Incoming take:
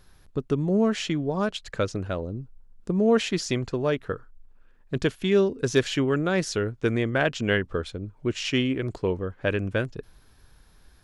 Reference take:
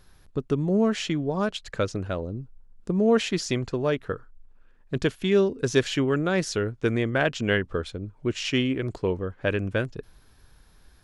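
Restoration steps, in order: clip repair -9.5 dBFS

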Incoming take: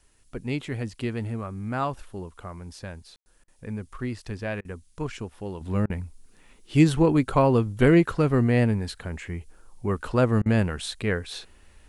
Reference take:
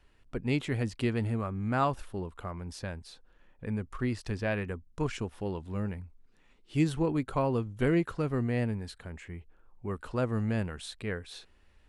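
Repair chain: room tone fill 3.16–3.26 s; interpolate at 3.44/4.61/5.86/10.42 s, 38 ms; expander -47 dBFS, range -21 dB; gain correction -9 dB, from 5.61 s

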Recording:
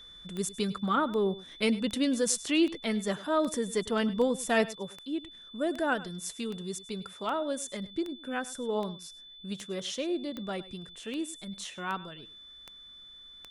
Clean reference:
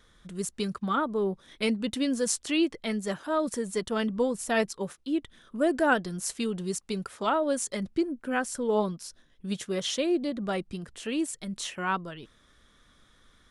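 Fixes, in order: de-click; band-stop 3.5 kHz, Q 30; inverse comb 102 ms -18 dB; trim 0 dB, from 4.65 s +5.5 dB

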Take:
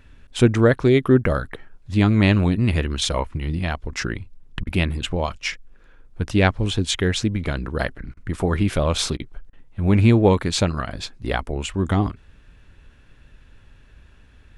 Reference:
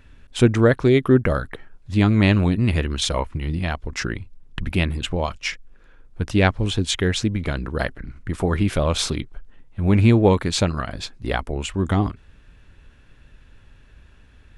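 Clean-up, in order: interpolate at 4.64/8.14/9.17/9.50 s, 28 ms

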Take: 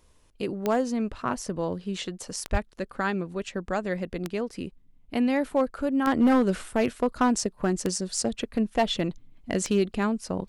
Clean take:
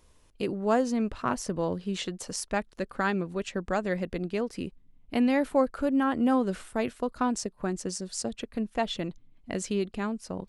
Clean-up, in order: clip repair -15 dBFS; de-click; de-plosive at 2.51 s; trim 0 dB, from 6.07 s -5.5 dB

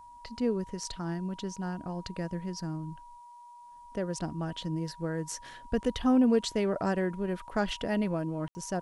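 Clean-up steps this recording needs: band-stop 960 Hz, Q 30; room tone fill 8.48–8.55 s; expander -43 dBFS, range -21 dB

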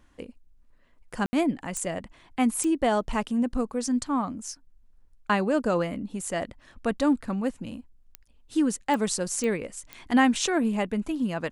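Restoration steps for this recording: de-click; room tone fill 1.26–1.33 s

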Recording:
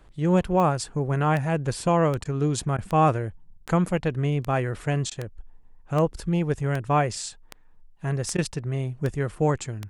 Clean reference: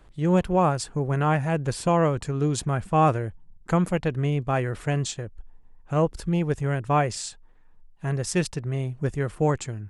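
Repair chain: de-click; interpolate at 2.24/2.77/3.66/5.10/8.37 s, 12 ms

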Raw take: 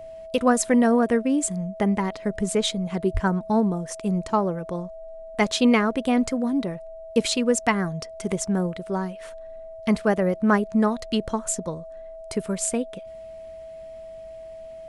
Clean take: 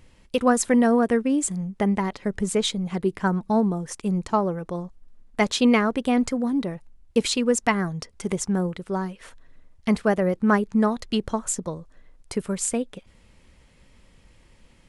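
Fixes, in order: band-stop 650 Hz, Q 30; 3.13–3.25 s: high-pass 140 Hz 24 dB/octave

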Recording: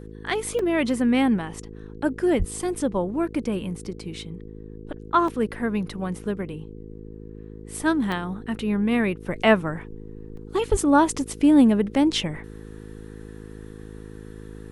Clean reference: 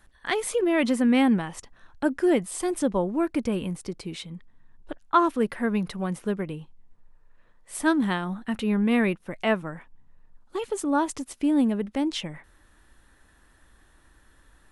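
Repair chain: de-hum 53.2 Hz, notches 9; 2.38–2.50 s: high-pass 140 Hz 24 dB/octave; 10.70–10.82 s: high-pass 140 Hz 24 dB/octave; interpolate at 0.59/5.28/8.12/10.37 s, 3 ms; 9.20 s: gain correction -6.5 dB

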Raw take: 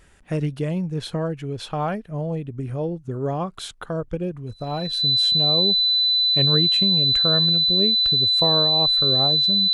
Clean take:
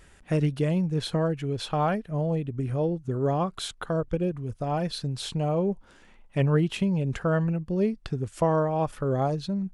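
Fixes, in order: band-stop 4 kHz, Q 30

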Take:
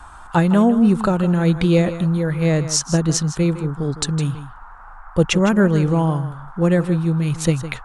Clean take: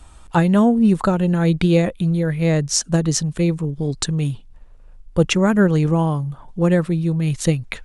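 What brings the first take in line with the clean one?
noise print and reduce 6 dB; inverse comb 159 ms -13 dB

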